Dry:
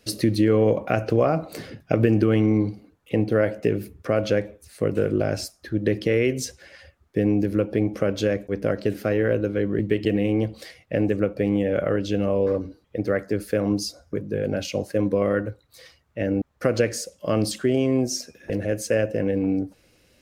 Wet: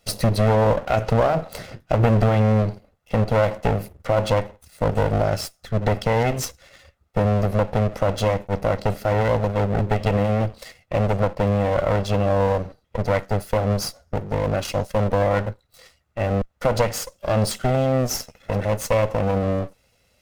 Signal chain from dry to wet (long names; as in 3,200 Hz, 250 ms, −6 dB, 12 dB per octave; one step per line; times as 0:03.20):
lower of the sound and its delayed copy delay 1.5 ms
leveller curve on the samples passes 1